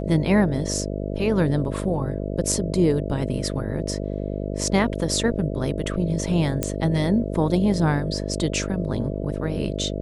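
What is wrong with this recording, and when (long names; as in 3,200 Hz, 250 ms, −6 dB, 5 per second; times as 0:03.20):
mains buzz 50 Hz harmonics 13 −28 dBFS
0:06.63: click −8 dBFS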